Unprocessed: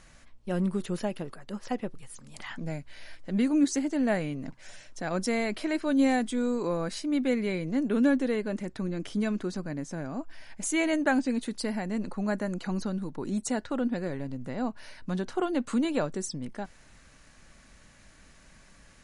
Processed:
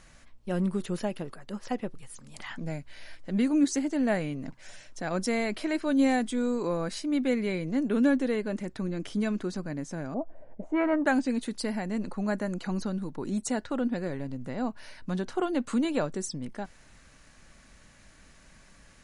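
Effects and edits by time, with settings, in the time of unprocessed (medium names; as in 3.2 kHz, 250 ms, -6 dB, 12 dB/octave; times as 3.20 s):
10.14–11.05 s: touch-sensitive low-pass 450–1300 Hz up, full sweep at -22 dBFS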